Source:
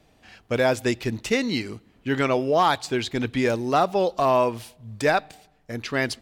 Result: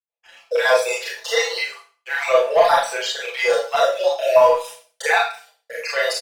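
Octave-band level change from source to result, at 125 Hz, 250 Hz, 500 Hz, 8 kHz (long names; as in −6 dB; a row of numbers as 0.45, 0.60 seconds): below −20 dB, below −20 dB, +6.0 dB, +7.5 dB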